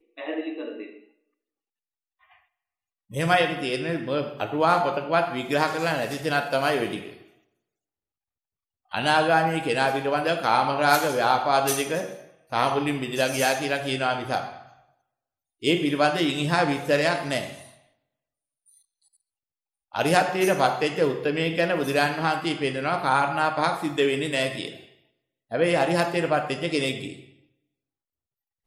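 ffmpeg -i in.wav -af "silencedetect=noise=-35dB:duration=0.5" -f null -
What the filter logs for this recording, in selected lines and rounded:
silence_start: 0.89
silence_end: 3.13 | silence_duration: 2.24
silence_start: 7.13
silence_end: 8.93 | silence_duration: 1.80
silence_start: 14.61
silence_end: 15.63 | silence_duration: 1.02
silence_start: 17.63
silence_end: 19.95 | silence_duration: 2.32
silence_start: 24.80
silence_end: 25.52 | silence_duration: 0.72
silence_start: 27.19
silence_end: 28.66 | silence_duration: 1.47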